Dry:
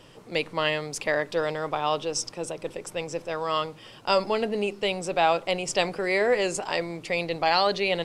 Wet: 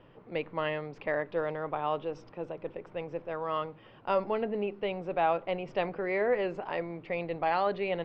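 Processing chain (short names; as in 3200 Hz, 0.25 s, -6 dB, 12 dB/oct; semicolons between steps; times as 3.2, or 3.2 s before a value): Bessel low-pass 1800 Hz, order 4; gain -4.5 dB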